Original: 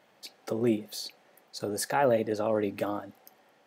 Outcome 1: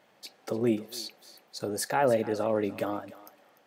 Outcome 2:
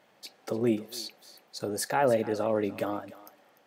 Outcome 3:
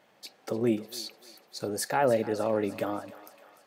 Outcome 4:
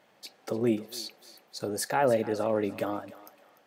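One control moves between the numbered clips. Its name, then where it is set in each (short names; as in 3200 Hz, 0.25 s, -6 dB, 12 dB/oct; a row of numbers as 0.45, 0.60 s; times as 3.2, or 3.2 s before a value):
thinning echo, feedback: 23, 16, 64, 37%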